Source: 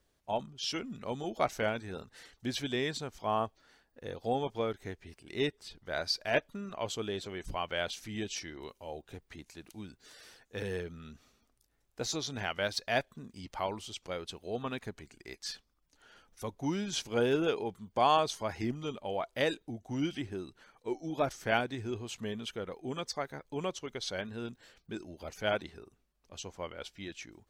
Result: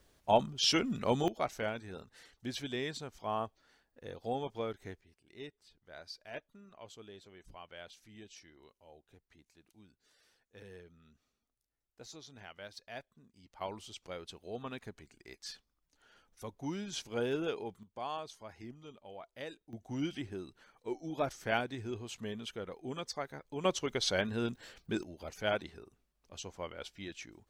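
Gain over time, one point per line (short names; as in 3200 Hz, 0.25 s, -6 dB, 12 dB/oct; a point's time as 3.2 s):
+7 dB
from 1.28 s -4.5 dB
from 5.01 s -15.5 dB
from 13.61 s -5.5 dB
from 17.83 s -14 dB
from 19.73 s -3 dB
from 23.65 s +5.5 dB
from 25.03 s -1.5 dB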